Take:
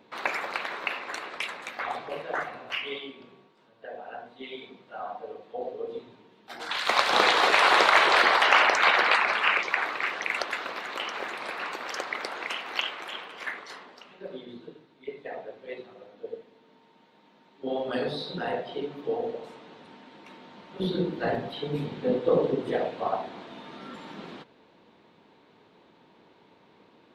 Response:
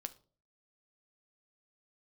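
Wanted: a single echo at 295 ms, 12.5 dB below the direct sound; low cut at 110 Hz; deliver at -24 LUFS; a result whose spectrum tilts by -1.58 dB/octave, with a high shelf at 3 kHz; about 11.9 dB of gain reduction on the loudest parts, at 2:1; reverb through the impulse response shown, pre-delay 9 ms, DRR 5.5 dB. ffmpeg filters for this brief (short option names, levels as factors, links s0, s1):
-filter_complex "[0:a]highpass=110,highshelf=f=3000:g=-8.5,acompressor=threshold=0.01:ratio=2,aecho=1:1:295:0.237,asplit=2[s0][s1];[1:a]atrim=start_sample=2205,adelay=9[s2];[s1][s2]afir=irnorm=-1:irlink=0,volume=0.75[s3];[s0][s3]amix=inputs=2:normalize=0,volume=4.73"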